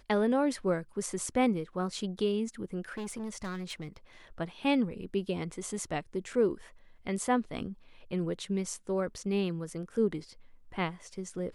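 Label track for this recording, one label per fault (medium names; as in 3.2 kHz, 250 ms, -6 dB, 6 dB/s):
2.970000	3.960000	clipped -34 dBFS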